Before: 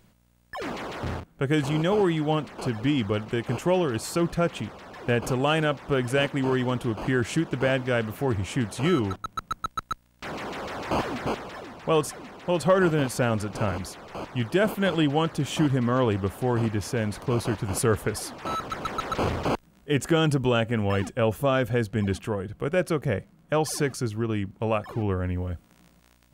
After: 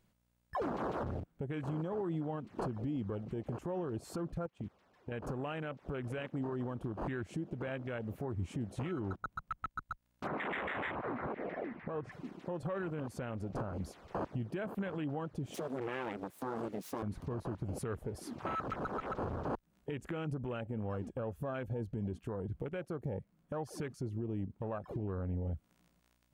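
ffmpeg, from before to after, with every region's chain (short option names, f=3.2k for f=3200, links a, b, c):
-filter_complex "[0:a]asettb=1/sr,asplit=3[a][b][c];[a]atrim=end=4.464[d];[b]atrim=start=4.46:end=5.12,asetpts=PTS-STARTPTS,afade=t=in:d=0.004:c=qsin,afade=t=out:st=0.656:d=0.004:c=qsin,agate=range=-12dB:threshold=-34dB:ratio=16:release=100:detection=peak,acompressor=threshold=-35dB:ratio=6:attack=3.2:release=140:knee=1:detection=peak[e];[c]atrim=start=5.116[f];[d][e]acrossfade=d=0.004:c1=hsin:c2=qsin[g];[g][f]acrossfade=d=0.004:c1=qsin:c2=hsin,asettb=1/sr,asplit=3[h][i][j];[h]atrim=end=10.274[k];[i]atrim=start=10.27:end=12.12,asetpts=PTS-STARTPTS,afade=t=in:d=0.004:c=qsin,afade=t=out:st=1.846:d=0.004:c=qsin,lowpass=f=2k:t=q:w=4.6,acompressor=threshold=-29dB:ratio=20:attack=3.2:release=140:knee=1:detection=peak[l];[j]atrim=start=12.116[m];[k][l]acrossfade=d=0.004:c1=hsin:c2=qsin[n];[n][m]acrossfade=d=0.004:c1=qsin:c2=hsin,asettb=1/sr,asplit=3[o][p][q];[o]atrim=end=15.544[r];[p]atrim=start=15.54:end=17.03,asetpts=PTS-STARTPTS,afade=t=in:d=0.004:c=qsin,afade=t=out:st=1.486:d=0.004:c=qsin,aeval=exprs='abs(val(0))':c=same,highpass=180,highshelf=f=3k:g=9[s];[q]atrim=start=17.026[t];[r][s]acrossfade=d=0.004:c1=hsin:c2=qsin[u];[u][t]acrossfade=d=0.004:c1=qsin:c2=hsin,afwtdn=0.0282,acompressor=threshold=-33dB:ratio=3,alimiter=level_in=7.5dB:limit=-24dB:level=0:latency=1:release=183,volume=-7.5dB,volume=2.5dB"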